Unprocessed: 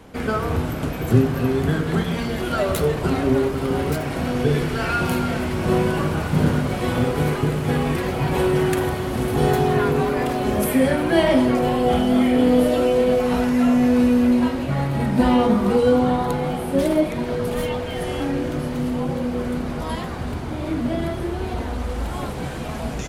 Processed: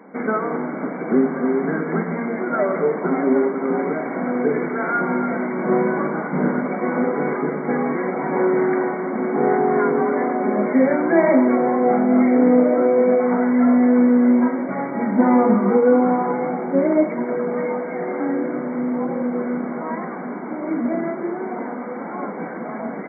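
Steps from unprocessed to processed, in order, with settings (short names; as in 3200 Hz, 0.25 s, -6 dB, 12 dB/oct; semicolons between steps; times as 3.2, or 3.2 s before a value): brick-wall FIR band-pass 170–2300 Hz; notch 1800 Hz, Q 14; gain +2 dB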